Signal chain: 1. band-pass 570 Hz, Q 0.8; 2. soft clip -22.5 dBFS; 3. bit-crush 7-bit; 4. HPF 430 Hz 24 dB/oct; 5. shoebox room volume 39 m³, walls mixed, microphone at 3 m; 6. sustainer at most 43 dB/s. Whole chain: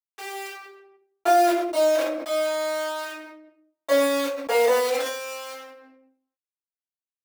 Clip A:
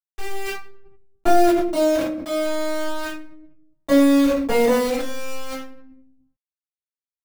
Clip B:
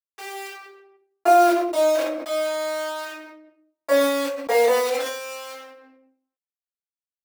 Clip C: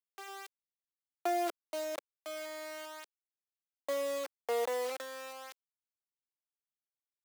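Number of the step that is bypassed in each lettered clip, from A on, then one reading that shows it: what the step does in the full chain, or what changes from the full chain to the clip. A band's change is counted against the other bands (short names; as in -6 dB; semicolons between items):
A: 4, 250 Hz band +12.0 dB; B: 2, distortion -15 dB; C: 5, 250 Hz band -2.0 dB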